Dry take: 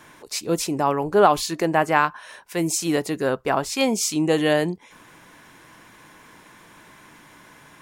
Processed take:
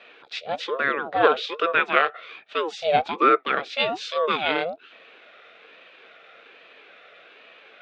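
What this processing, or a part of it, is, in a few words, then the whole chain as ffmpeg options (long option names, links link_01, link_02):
voice changer toy: -filter_complex "[0:a]asettb=1/sr,asplit=3[link_01][link_02][link_03];[link_01]atrim=end=2.814[link_04];[link_02]atrim=start=2.81:end=3.43,asetpts=PTS-STARTPTS,afade=type=in:duration=0.004:curve=qsin,afade=type=out:start_time=0.616:duration=0.004:curve=qsin,equalizer=frequency=440:width=2:gain=11.5[link_05];[link_03]atrim=start=3.426[link_06];[link_04][link_05]acrossfade=duration=0.004:curve1=hsin:curve2=qsin[link_07];[link_07][link_06]acrossfade=duration=0.004:curve1=qsin:curve2=hsin,aeval=exprs='val(0)*sin(2*PI*560*n/s+560*0.5/1.2*sin(2*PI*1.2*n/s))':channel_layout=same,highpass=410,equalizer=frequency=460:width_type=q:width=4:gain=8,equalizer=frequency=650:width_type=q:width=4:gain=3,equalizer=frequency=930:width_type=q:width=4:gain=-10,equalizer=frequency=1400:width_type=q:width=4:gain=5,equalizer=frequency=2500:width_type=q:width=4:gain=7,equalizer=frequency=3600:width_type=q:width=4:gain=9,lowpass=frequency=3800:width=0.5412,lowpass=frequency=3800:width=1.3066"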